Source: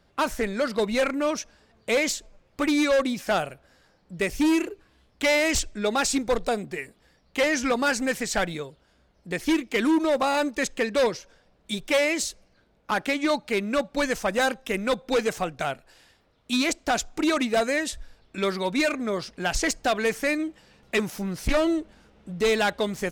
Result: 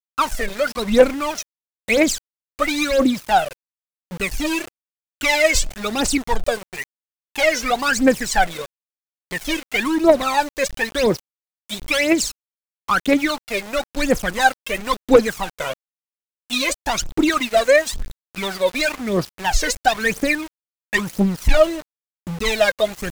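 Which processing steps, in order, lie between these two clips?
phase shifter 0.99 Hz, delay 2 ms, feedback 80%
centre clipping without the shift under −31 dBFS
wow of a warped record 45 rpm, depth 100 cents
level +1.5 dB

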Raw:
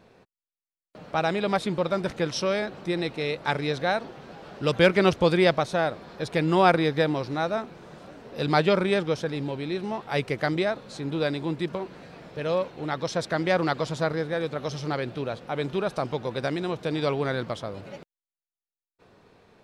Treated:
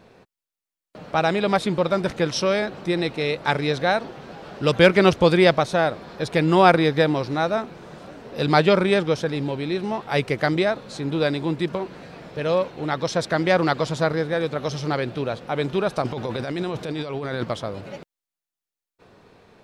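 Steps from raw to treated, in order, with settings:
0:16.02–0:17.44: compressor whose output falls as the input rises −32 dBFS, ratio −1
level +4.5 dB

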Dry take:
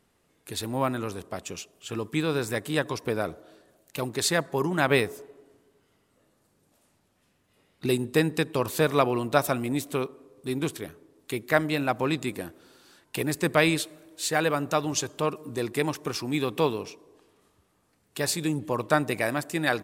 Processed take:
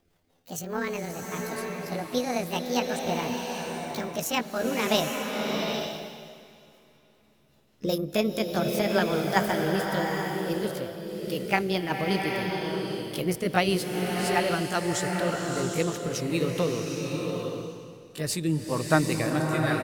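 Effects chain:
pitch glide at a constant tempo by +9.5 semitones ending unshifted
low-shelf EQ 150 Hz +11 dB
on a send: repeating echo 413 ms, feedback 51%, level −20 dB
on the sum: rotating-speaker cabinet horn 5 Hz
slow-attack reverb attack 810 ms, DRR 1.5 dB

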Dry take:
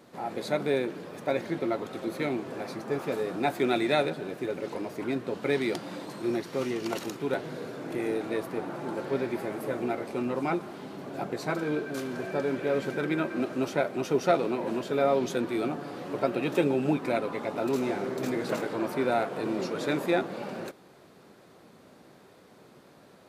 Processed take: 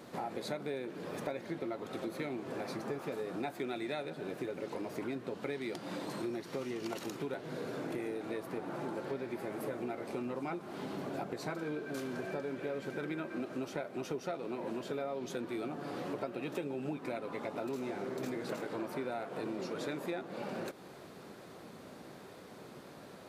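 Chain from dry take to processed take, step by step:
downward compressor 6 to 1, threshold −40 dBFS, peak gain reduction 20.5 dB
level +3.5 dB

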